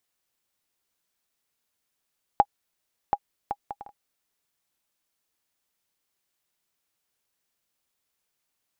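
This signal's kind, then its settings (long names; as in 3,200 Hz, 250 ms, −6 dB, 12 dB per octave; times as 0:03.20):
bouncing ball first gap 0.73 s, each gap 0.52, 815 Hz, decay 53 ms −5.5 dBFS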